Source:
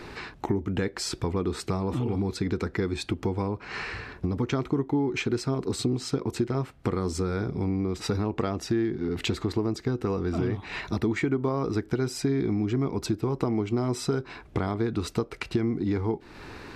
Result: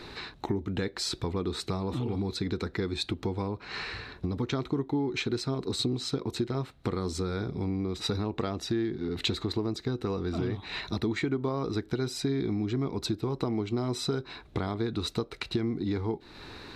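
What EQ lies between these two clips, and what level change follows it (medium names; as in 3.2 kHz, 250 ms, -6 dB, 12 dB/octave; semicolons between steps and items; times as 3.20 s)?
peaking EQ 3.9 kHz +12 dB 0.32 oct; -3.5 dB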